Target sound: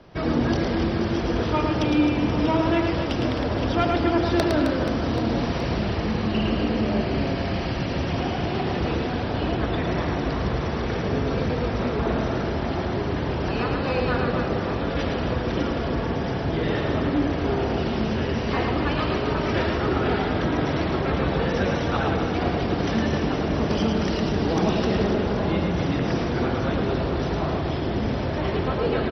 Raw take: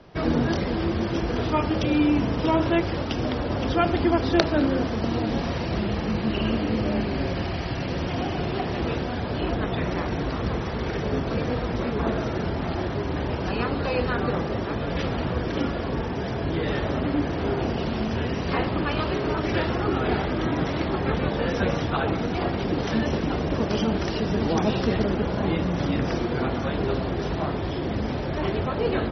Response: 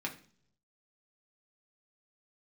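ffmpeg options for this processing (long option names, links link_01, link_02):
-af "asoftclip=type=tanh:threshold=-13dB,aecho=1:1:110|264|479.6|781.4|1204:0.631|0.398|0.251|0.158|0.1"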